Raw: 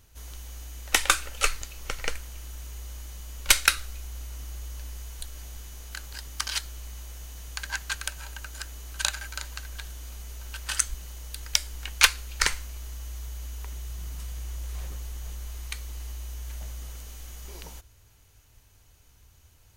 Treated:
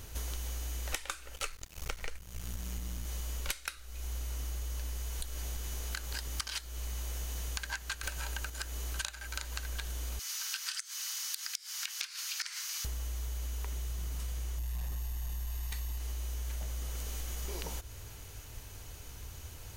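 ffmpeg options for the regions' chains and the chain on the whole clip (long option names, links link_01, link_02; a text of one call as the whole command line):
ffmpeg -i in.wav -filter_complex "[0:a]asettb=1/sr,asplit=3[link_01][link_02][link_03];[link_01]atrim=end=1.364[link_04];[link_02]atrim=start=1.36:end=3.05,asetpts=PTS-STARTPTS,afade=type=in:duration=0.004:curve=qsin,afade=type=out:start_time=1.686:duration=0.004:curve=qsin,asubboost=boost=3.5:cutoff=95,aeval=exprs='sgn(val(0))*max(abs(val(0))-0.0119,0)':channel_layout=same[link_05];[link_03]atrim=start=3.046[link_06];[link_04][link_05]acrossfade=duration=0.004:curve1=hsin:curve2=qsin[link_07];[link_07][link_06]acrossfade=duration=0.004:curve1=qsin:curve2=hsin,asettb=1/sr,asplit=3[link_08][link_09][link_10];[link_08]atrim=end=8.034[link_11];[link_09]atrim=start=8.03:end=8.5,asetpts=PTS-STARTPTS,afade=type=in:duration=0.004:curve=qsin,afade=type=out:start_time=0.466:duration=0.004:curve=qsin,acontrast=86,asoftclip=type=hard:threshold=-21.5dB[link_12];[link_10]atrim=start=8.496[link_13];[link_11][link_12]acrossfade=duration=0.004:curve1=hsin:curve2=qsin[link_14];[link_14][link_13]acrossfade=duration=0.004:curve1=qsin:curve2=hsin,asettb=1/sr,asplit=3[link_15][link_16][link_17];[link_15]atrim=end=10.194[link_18];[link_16]atrim=start=10.19:end=12.85,asetpts=PTS-STARTPTS,afade=type=in:duration=0.004:curve=qsin,afade=type=out:start_time=2.656:duration=0.004:curve=qsin,highpass=frequency=1200:width=0.5412,highpass=frequency=1200:width=1.3066,equalizer=frequency=5100:width_type=o:width=0.69:gain=9,acompressor=threshold=-33dB:ratio=10:attack=3.2:release=140:knee=1:detection=peak[link_19];[link_17]atrim=start=12.846[link_20];[link_18][link_19]acrossfade=duration=0.004:curve1=hsin:curve2=qsin[link_21];[link_21][link_20]acrossfade=duration=0.004:curve1=qsin:curve2=hsin,asettb=1/sr,asplit=3[link_22][link_23][link_24];[link_22]atrim=end=14.584[link_25];[link_23]atrim=start=14.58:end=15.98,asetpts=PTS-STARTPTS,afade=type=in:duration=0.004:curve=qsin,afade=type=out:start_time=1.396:duration=0.004:curve=qsin,aeval=exprs='val(0)+0.00282*sin(2*PI*12000*n/s)':channel_layout=same,asoftclip=type=hard:threshold=-32dB,aecho=1:1:1.1:0.48,atrim=end_sample=61740[link_26];[link_24]atrim=start=15.976[link_27];[link_25][link_26]acrossfade=duration=0.004:curve1=hsin:curve2=qsin[link_28];[link_28][link_27]acrossfade=duration=0.004:curve1=qsin:curve2=hsin,equalizer=frequency=430:width_type=o:width=0.92:gain=3,acompressor=threshold=-45dB:ratio=20,volume=11dB" out.wav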